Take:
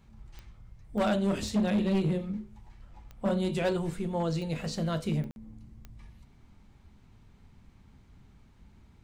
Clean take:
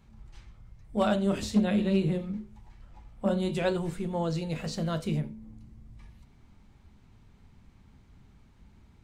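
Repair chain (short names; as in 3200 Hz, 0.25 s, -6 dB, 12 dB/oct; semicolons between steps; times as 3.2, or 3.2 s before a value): clip repair -22 dBFS; de-click; interpolate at 5.31, 51 ms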